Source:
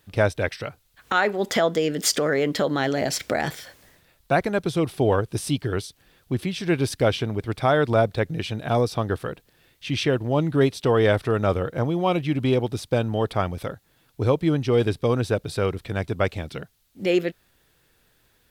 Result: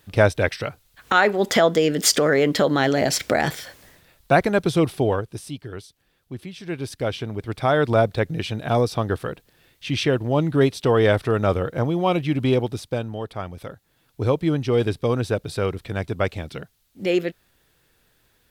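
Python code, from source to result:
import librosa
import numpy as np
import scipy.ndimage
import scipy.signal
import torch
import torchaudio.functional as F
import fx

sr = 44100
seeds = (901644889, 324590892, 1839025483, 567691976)

y = fx.gain(x, sr, db=fx.line((4.84, 4.0), (5.49, -9.0), (6.53, -9.0), (7.86, 1.5), (12.58, 1.5), (13.29, -8.0), (14.26, 0.0)))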